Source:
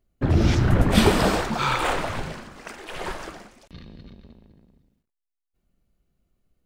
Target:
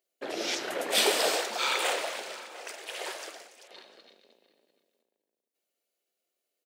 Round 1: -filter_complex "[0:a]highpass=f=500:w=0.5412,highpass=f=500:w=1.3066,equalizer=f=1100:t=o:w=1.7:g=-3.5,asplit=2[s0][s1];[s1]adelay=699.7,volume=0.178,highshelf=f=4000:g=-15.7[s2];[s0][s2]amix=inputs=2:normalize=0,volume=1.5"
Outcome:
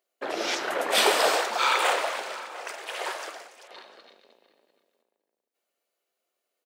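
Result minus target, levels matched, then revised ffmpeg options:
1 kHz band +4.5 dB
-filter_complex "[0:a]highpass=f=500:w=0.5412,highpass=f=500:w=1.3066,equalizer=f=1100:t=o:w=1.7:g=-13,asplit=2[s0][s1];[s1]adelay=699.7,volume=0.178,highshelf=f=4000:g=-15.7[s2];[s0][s2]amix=inputs=2:normalize=0,volume=1.5"

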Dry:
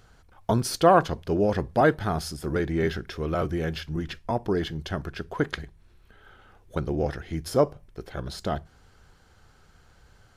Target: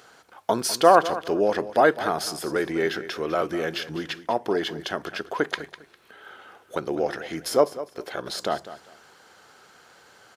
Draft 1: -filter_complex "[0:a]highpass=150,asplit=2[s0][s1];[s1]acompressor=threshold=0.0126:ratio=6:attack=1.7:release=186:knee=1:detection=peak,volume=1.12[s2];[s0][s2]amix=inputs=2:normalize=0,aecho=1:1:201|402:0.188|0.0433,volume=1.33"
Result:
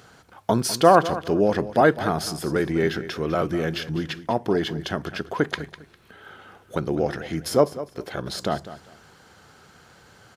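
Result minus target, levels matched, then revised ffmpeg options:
125 Hz band +10.0 dB
-filter_complex "[0:a]highpass=360,asplit=2[s0][s1];[s1]acompressor=threshold=0.0126:ratio=6:attack=1.7:release=186:knee=1:detection=peak,volume=1.12[s2];[s0][s2]amix=inputs=2:normalize=0,aecho=1:1:201|402:0.188|0.0433,volume=1.33"

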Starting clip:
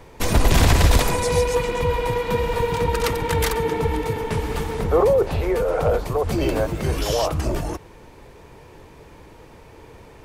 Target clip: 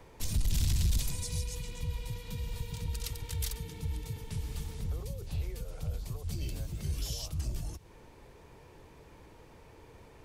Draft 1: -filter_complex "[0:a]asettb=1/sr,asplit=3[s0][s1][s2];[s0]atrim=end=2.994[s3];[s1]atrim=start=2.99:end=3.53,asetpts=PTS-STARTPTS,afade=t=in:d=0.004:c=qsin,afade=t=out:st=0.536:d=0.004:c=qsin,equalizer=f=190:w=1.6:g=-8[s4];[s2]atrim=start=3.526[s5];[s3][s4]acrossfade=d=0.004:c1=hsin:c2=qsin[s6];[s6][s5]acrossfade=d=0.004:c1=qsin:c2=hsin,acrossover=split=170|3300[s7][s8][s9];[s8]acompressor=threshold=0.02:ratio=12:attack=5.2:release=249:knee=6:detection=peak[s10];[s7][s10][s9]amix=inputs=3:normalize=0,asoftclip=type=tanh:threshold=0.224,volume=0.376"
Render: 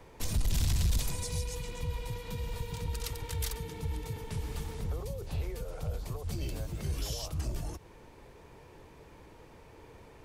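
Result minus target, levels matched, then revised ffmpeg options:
compression: peak gain reduction -7.5 dB
-filter_complex "[0:a]asettb=1/sr,asplit=3[s0][s1][s2];[s0]atrim=end=2.994[s3];[s1]atrim=start=2.99:end=3.53,asetpts=PTS-STARTPTS,afade=t=in:d=0.004:c=qsin,afade=t=out:st=0.536:d=0.004:c=qsin,equalizer=f=190:w=1.6:g=-8[s4];[s2]atrim=start=3.526[s5];[s3][s4]acrossfade=d=0.004:c1=hsin:c2=qsin[s6];[s6][s5]acrossfade=d=0.004:c1=qsin:c2=hsin,acrossover=split=170|3300[s7][s8][s9];[s8]acompressor=threshold=0.00794:ratio=12:attack=5.2:release=249:knee=6:detection=peak[s10];[s7][s10][s9]amix=inputs=3:normalize=0,asoftclip=type=tanh:threshold=0.224,volume=0.376"

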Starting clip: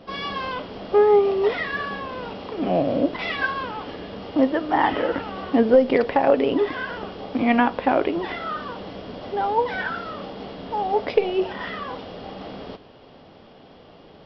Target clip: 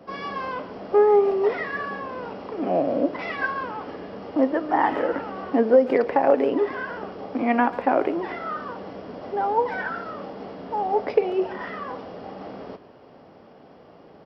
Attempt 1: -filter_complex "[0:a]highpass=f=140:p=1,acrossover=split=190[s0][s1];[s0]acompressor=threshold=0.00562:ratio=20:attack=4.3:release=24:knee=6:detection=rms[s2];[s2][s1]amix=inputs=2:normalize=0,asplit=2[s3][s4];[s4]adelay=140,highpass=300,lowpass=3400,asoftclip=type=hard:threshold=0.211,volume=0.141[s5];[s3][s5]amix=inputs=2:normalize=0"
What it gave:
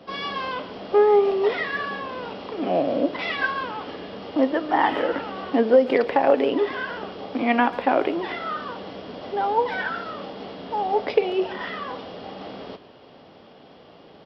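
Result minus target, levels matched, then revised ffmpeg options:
4 kHz band +9.5 dB
-filter_complex "[0:a]highpass=f=140:p=1,equalizer=f=3500:w=1.4:g=-12.5,acrossover=split=190[s0][s1];[s0]acompressor=threshold=0.00562:ratio=20:attack=4.3:release=24:knee=6:detection=rms[s2];[s2][s1]amix=inputs=2:normalize=0,asplit=2[s3][s4];[s4]adelay=140,highpass=300,lowpass=3400,asoftclip=type=hard:threshold=0.211,volume=0.141[s5];[s3][s5]amix=inputs=2:normalize=0"

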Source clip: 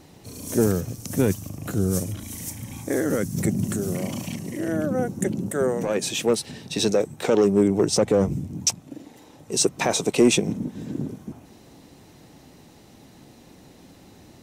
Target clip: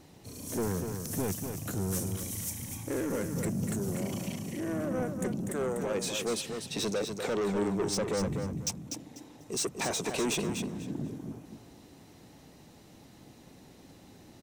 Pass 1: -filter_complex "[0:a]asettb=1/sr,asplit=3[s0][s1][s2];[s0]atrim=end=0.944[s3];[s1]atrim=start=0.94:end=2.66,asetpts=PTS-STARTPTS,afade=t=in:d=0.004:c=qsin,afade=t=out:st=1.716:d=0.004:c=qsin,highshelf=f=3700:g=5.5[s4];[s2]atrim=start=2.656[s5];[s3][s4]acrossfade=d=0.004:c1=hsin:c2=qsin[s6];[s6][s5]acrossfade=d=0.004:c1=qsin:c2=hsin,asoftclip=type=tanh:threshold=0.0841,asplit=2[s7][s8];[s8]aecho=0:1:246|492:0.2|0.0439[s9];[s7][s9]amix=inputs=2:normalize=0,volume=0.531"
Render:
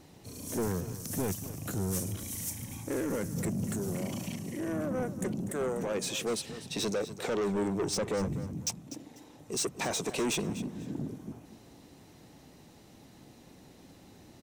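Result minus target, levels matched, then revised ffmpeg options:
echo-to-direct -7.5 dB
-filter_complex "[0:a]asettb=1/sr,asplit=3[s0][s1][s2];[s0]atrim=end=0.944[s3];[s1]atrim=start=0.94:end=2.66,asetpts=PTS-STARTPTS,afade=t=in:d=0.004:c=qsin,afade=t=out:st=1.716:d=0.004:c=qsin,highshelf=f=3700:g=5.5[s4];[s2]atrim=start=2.656[s5];[s3][s4]acrossfade=d=0.004:c1=hsin:c2=qsin[s6];[s6][s5]acrossfade=d=0.004:c1=qsin:c2=hsin,asoftclip=type=tanh:threshold=0.0841,asplit=2[s7][s8];[s8]aecho=0:1:246|492|738:0.473|0.104|0.0229[s9];[s7][s9]amix=inputs=2:normalize=0,volume=0.531"

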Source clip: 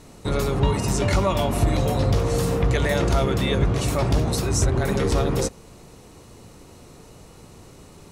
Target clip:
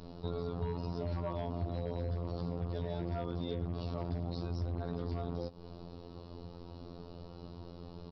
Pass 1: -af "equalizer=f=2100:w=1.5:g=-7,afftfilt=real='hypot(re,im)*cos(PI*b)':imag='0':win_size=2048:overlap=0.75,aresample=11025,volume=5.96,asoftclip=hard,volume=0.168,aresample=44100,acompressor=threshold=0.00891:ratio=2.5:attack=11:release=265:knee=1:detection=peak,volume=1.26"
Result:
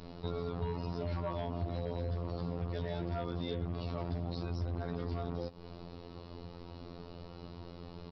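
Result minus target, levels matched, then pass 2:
2 kHz band +4.0 dB
-af "equalizer=f=2100:w=1.5:g=-17,afftfilt=real='hypot(re,im)*cos(PI*b)':imag='0':win_size=2048:overlap=0.75,aresample=11025,volume=5.96,asoftclip=hard,volume=0.168,aresample=44100,acompressor=threshold=0.00891:ratio=2.5:attack=11:release=265:knee=1:detection=peak,volume=1.26"

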